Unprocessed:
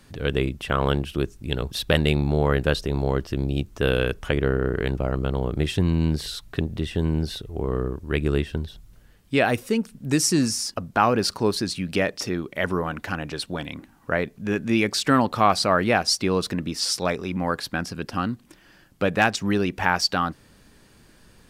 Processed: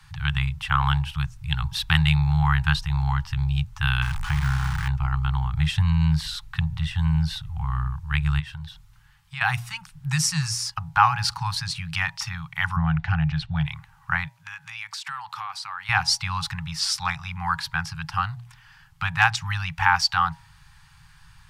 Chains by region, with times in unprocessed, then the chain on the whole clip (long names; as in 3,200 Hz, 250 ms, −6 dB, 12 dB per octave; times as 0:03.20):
0:04.02–0:04.88: linear delta modulator 64 kbit/s, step −24 dBFS + de-essing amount 80%
0:08.39–0:09.41: downward compressor 3 to 1, threshold −30 dBFS + low-shelf EQ 97 Hz −10.5 dB
0:12.76–0:13.66: low-pass filter 3,400 Hz + low shelf with overshoot 730 Hz +9.5 dB, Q 3
0:14.29–0:15.89: high-pass filter 940 Hz 6 dB per octave + downward compressor 4 to 1, threshold −33 dBFS
whole clip: Chebyshev band-stop filter 160–810 Hz, order 5; high-shelf EQ 6,100 Hz −10 dB; hum removal 119.2 Hz, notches 8; level +4.5 dB